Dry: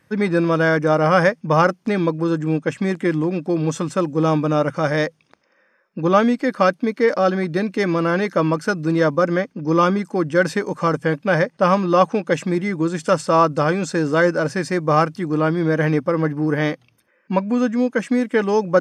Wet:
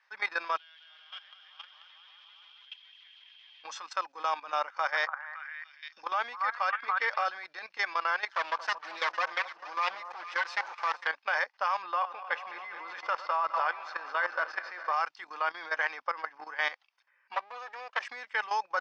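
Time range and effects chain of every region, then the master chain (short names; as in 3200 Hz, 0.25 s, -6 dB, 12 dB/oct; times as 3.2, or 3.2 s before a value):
0.57–3.64 zero-crossing step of -24 dBFS + band-pass 3200 Hz, Q 19 + bouncing-ball echo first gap 0.21 s, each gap 0.85×, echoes 7, each echo -2 dB
4.64–7.25 high shelf 6300 Hz -6.5 dB + delay with a stepping band-pass 0.283 s, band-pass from 1200 Hz, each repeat 0.7 oct, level -2 dB
8.28–11.07 minimum comb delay 5.9 ms + echo with dull and thin repeats by turns 0.226 s, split 1200 Hz, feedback 65%, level -12 dB
11.82–14.93 regenerating reverse delay 0.104 s, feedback 81%, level -12 dB + air absorption 210 m
17.34–18.05 minimum comb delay 1.7 ms + high shelf 2900 Hz -6 dB
whole clip: Chebyshev band-pass 840–5200 Hz, order 3; level quantiser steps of 14 dB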